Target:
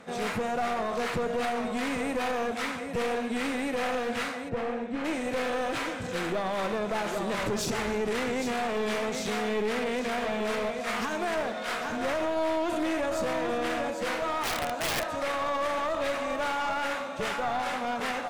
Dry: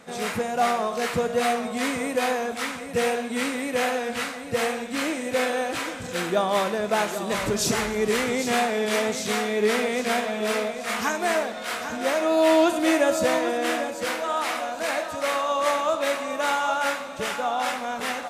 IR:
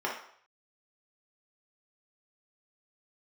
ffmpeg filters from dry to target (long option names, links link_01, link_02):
-filter_complex "[0:a]aemphasis=mode=reproduction:type=cd,asettb=1/sr,asplit=3[link_01][link_02][link_03];[link_01]atrim=end=14.434[link_04];[link_02]atrim=start=14.43:end=15.12,asetpts=PTS-STARTPTS,afade=type=in:duration=0.004:curve=qsin,afade=type=out:start_time=0.686:duration=0.004:curve=qsin,aeval=exprs='(mod(11.9*val(0)+1,2)-1)/11.9':channel_layout=same[link_05];[link_03]atrim=start=15.116[link_06];[link_04][link_05]acrossfade=duration=0.004:curve1=hsin:curve2=qsin[link_07];[link_07][link_06]acrossfade=duration=0.004:curve1=qsin:curve2=hsin,alimiter=limit=-19.5dB:level=0:latency=1:release=40,aeval=exprs='clip(val(0),-1,0.0316)':channel_layout=same,asplit=3[link_08][link_09][link_10];[link_08]afade=type=out:start_time=4.48:duration=0.02[link_11];[link_09]lowpass=frequency=1000:poles=1,afade=type=in:start_time=4.48:duration=0.02,afade=type=out:start_time=5.04:duration=0.02[link_12];[link_10]afade=type=in:start_time=5.04:duration=0.02[link_13];[link_11][link_12][link_13]amix=inputs=3:normalize=0"